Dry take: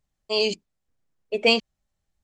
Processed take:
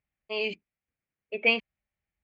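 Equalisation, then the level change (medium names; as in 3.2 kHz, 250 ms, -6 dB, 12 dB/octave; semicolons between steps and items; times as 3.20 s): high-pass 41 Hz; resonant low-pass 2.3 kHz, resonance Q 3.6; band-stop 1 kHz, Q 15; -8.5 dB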